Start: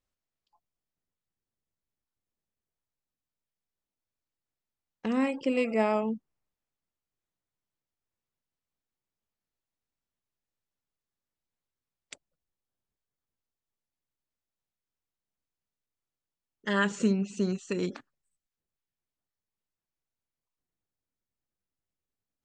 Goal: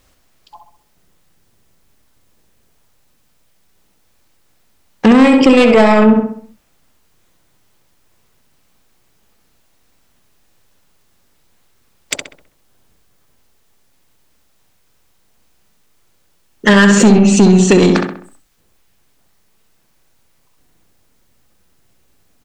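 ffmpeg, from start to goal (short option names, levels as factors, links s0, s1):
-filter_complex "[0:a]asplit=2[s0][s1];[s1]acompressor=threshold=0.0126:ratio=6,volume=0.75[s2];[s0][s2]amix=inputs=2:normalize=0,asoftclip=type=tanh:threshold=0.0562,asplit=2[s3][s4];[s4]adelay=65,lowpass=f=2700:p=1,volume=0.562,asplit=2[s5][s6];[s6]adelay=65,lowpass=f=2700:p=1,volume=0.46,asplit=2[s7][s8];[s8]adelay=65,lowpass=f=2700:p=1,volume=0.46,asplit=2[s9][s10];[s10]adelay=65,lowpass=f=2700:p=1,volume=0.46,asplit=2[s11][s12];[s12]adelay=65,lowpass=f=2700:p=1,volume=0.46,asplit=2[s13][s14];[s14]adelay=65,lowpass=f=2700:p=1,volume=0.46[s15];[s3][s5][s7][s9][s11][s13][s15]amix=inputs=7:normalize=0,alimiter=level_in=22.4:limit=0.891:release=50:level=0:latency=1,volume=0.891"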